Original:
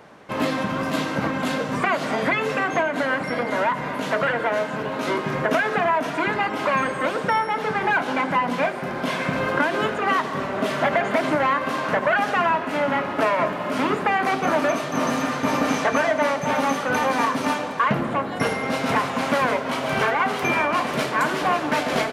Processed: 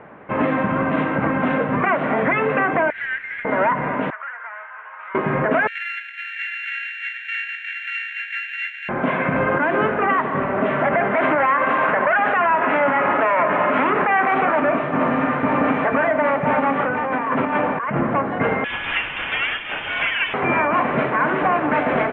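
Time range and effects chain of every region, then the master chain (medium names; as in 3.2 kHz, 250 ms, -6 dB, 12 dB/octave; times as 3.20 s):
2.90–3.45 s: elliptic high-pass 1.7 kHz, stop band 50 dB + companded quantiser 4-bit
4.10–5.15 s: high-pass 1.2 kHz 24 dB/octave + compression 2:1, threshold -28 dBFS + tape spacing loss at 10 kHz 45 dB
5.67–8.89 s: sorted samples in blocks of 32 samples + steep high-pass 1.6 kHz 96 dB/octave + delay 660 ms -3 dB
11.14–14.60 s: bass shelf 380 Hz -11.5 dB + level flattener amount 70%
16.79–17.97 s: low-pass 3.9 kHz 24 dB/octave + compressor with a negative ratio -26 dBFS
18.64–20.34 s: high-pass 410 Hz 6 dB/octave + frequency inversion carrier 3.8 kHz
whole clip: inverse Chebyshev low-pass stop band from 4.6 kHz, stop band 40 dB; peak limiter -14.5 dBFS; trim +5 dB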